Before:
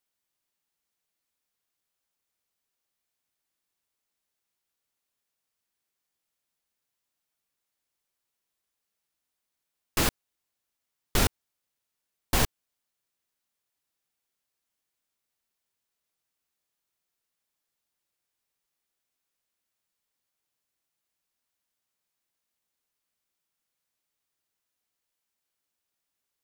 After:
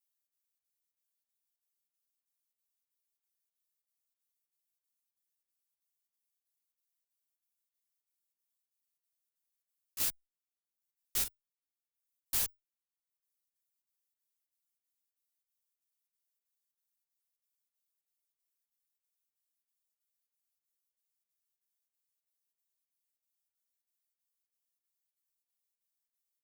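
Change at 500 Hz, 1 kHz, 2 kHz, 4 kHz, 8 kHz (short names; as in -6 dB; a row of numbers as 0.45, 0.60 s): -23.0, -20.0, -15.5, -10.0, -4.5 dB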